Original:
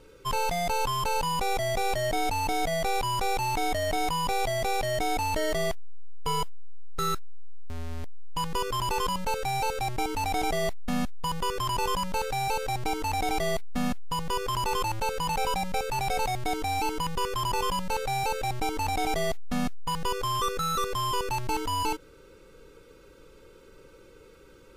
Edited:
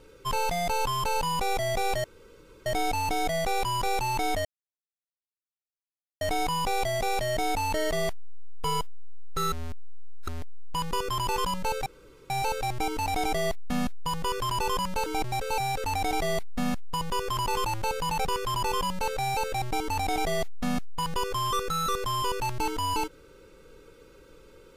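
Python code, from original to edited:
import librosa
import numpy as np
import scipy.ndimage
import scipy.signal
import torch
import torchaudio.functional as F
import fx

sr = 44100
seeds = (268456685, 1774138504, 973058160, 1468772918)

y = fx.edit(x, sr, fx.insert_room_tone(at_s=2.04, length_s=0.62),
    fx.insert_silence(at_s=3.83, length_s=1.76),
    fx.reverse_span(start_s=7.14, length_s=0.76),
    fx.insert_room_tone(at_s=9.48, length_s=0.44),
    fx.reverse_span(start_s=12.24, length_s=0.78),
    fx.cut(start_s=15.43, length_s=1.71), tone=tone)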